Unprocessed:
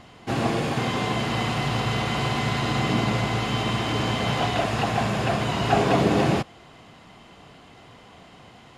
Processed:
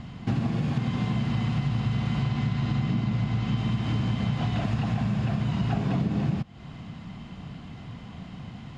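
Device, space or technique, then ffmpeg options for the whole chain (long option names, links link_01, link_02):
jukebox: -filter_complex "[0:a]lowpass=6200,lowshelf=frequency=280:width_type=q:width=1.5:gain=11.5,acompressor=threshold=-24dB:ratio=6,asettb=1/sr,asplit=3[link_01][link_02][link_03];[link_01]atrim=end=2.214[link_04];[link_02]atrim=start=2.21:end=3.57,asetpts=PTS-STARTPTS,afade=type=in:duration=0.004:curve=qsin,afade=type=out:start_time=1.356:duration=0.004:curve=qsin,lowpass=8000[link_05];[link_03]atrim=start=3.566[link_06];[link_04][link_05]acrossfade=duration=0.004:curve1=hsin:curve2=qsin[link_07];[link_07][link_06]acrossfade=duration=0.004:curve1=qsin:curve2=hsin"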